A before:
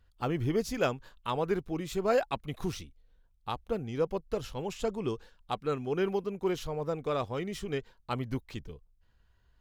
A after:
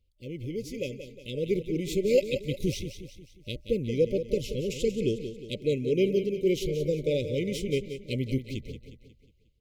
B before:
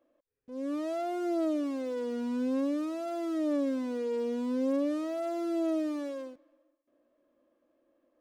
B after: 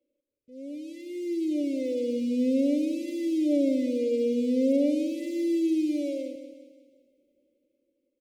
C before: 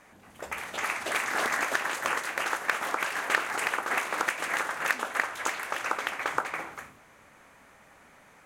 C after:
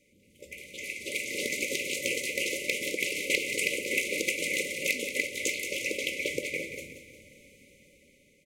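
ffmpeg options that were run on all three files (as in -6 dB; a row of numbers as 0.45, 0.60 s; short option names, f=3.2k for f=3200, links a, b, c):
-filter_complex "[0:a]afftfilt=real='re*(1-between(b*sr/4096,600,2000))':imag='im*(1-between(b*sr/4096,600,2000))':win_size=4096:overlap=0.75,dynaudnorm=f=400:g=7:m=12dB,asplit=2[a][b];[b]aecho=0:1:180|360|540|720|900:0.316|0.149|0.0699|0.0328|0.0154[c];[a][c]amix=inputs=2:normalize=0,volume=-6.5dB"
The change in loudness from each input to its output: +4.0, +5.5, -0.5 LU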